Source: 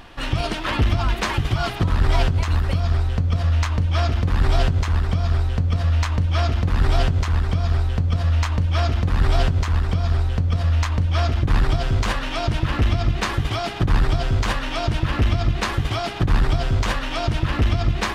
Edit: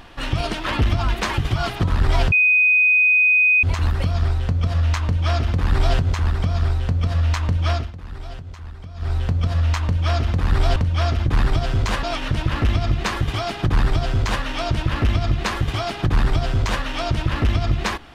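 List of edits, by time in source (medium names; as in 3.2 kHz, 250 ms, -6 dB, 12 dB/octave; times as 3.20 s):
2.32 s: add tone 2.5 kHz -12 dBFS 1.31 s
6.40–7.85 s: dip -15.5 dB, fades 0.20 s
9.45–10.93 s: delete
12.20–12.48 s: reverse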